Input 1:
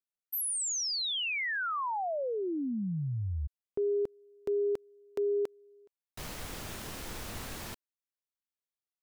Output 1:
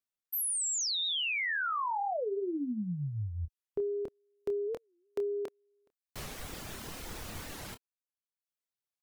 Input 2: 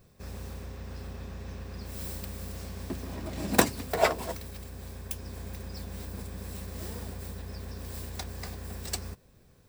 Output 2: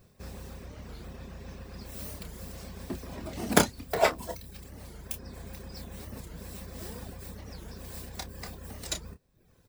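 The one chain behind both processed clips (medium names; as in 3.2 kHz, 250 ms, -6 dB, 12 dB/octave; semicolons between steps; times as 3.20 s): reverb removal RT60 0.78 s; doubling 28 ms -9 dB; warped record 45 rpm, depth 250 cents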